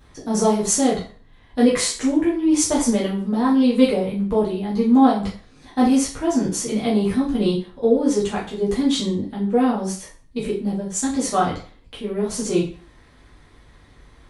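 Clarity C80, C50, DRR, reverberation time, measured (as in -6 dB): 12.0 dB, 7.0 dB, -6.5 dB, 0.45 s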